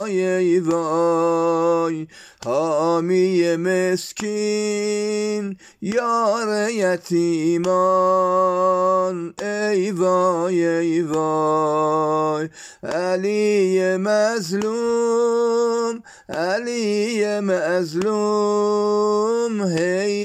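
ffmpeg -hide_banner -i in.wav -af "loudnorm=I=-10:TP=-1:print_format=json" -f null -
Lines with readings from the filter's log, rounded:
"input_i" : "-19.9",
"input_tp" : "-7.8",
"input_lra" : "1.9",
"input_thresh" : "-30.0",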